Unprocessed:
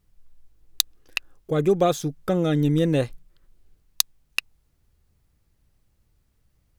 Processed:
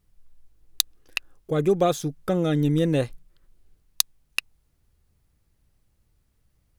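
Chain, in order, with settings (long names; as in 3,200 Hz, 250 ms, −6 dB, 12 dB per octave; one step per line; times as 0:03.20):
parametric band 10,000 Hz +3 dB 0.24 octaves
level −1 dB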